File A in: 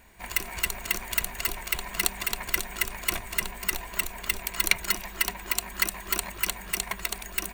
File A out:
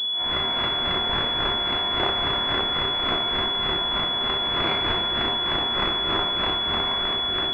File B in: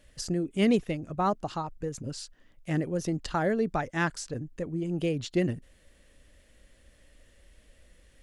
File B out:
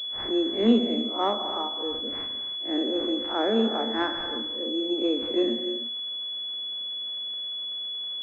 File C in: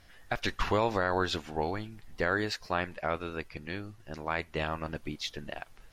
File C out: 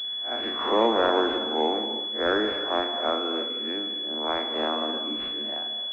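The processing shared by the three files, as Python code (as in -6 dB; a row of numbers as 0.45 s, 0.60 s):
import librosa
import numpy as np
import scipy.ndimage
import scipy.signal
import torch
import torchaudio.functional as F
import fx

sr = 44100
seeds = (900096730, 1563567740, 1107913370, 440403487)

y = fx.spec_blur(x, sr, span_ms=102.0)
y = fx.rev_gated(y, sr, seeds[0], gate_ms=350, shape='flat', drr_db=6.5)
y = fx.dmg_crackle(y, sr, seeds[1], per_s=420.0, level_db=-48.0)
y = scipy.signal.sosfilt(scipy.signal.butter(16, 220.0, 'highpass', fs=sr, output='sos'), y)
y = fx.pwm(y, sr, carrier_hz=3400.0)
y = librosa.util.normalize(y) * 10.0 ** (-9 / 20.0)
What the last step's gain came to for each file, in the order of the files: +12.0 dB, +6.0 dB, +8.5 dB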